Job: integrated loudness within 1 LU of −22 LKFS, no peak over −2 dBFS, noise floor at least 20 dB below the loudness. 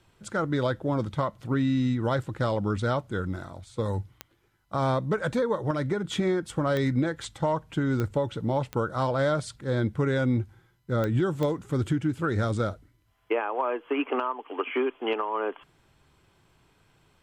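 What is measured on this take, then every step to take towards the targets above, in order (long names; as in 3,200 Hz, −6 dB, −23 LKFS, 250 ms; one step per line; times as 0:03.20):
number of clicks 6; integrated loudness −28.0 LKFS; sample peak −14.5 dBFS; target loudness −22.0 LKFS
→ click removal
level +6 dB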